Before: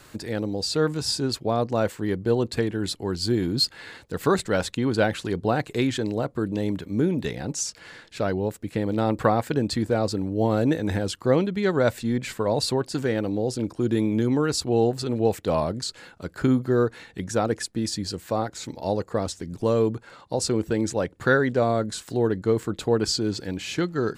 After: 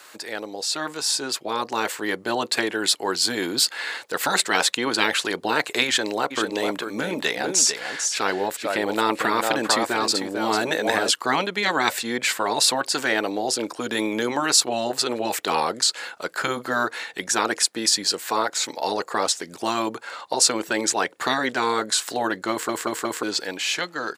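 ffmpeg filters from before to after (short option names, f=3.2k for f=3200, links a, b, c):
-filter_complex "[0:a]asplit=3[a][b][c];[a]afade=t=out:st=6.3:d=0.02[d];[b]aecho=1:1:446:0.376,afade=t=in:st=6.3:d=0.02,afade=t=out:st=11.09:d=0.02[e];[c]afade=t=in:st=11.09:d=0.02[f];[d][e][f]amix=inputs=3:normalize=0,asplit=5[g][h][i][j][k];[g]atrim=end=22.692[l];[h]atrim=start=22.508:end=22.692[m];[i]atrim=start=22.508:end=22.692[n];[j]atrim=start=22.508:end=22.692[o];[k]atrim=start=23.228[p];[l][m]acrossfade=d=0.004:c1=hsin:c2=hsin[q];[q][n]acrossfade=d=0.004:c1=hsin:c2=hsin[r];[r][o]acrossfade=d=0.004:c1=hsin:c2=hsin[s];[s][p]acrossfade=d=0.004:c1=hsin:c2=hsin,highpass=660,afftfilt=real='re*lt(hypot(re,im),0.158)':imag='im*lt(hypot(re,im),0.158)':win_size=1024:overlap=0.75,dynaudnorm=f=350:g=9:m=7dB,volume=5.5dB"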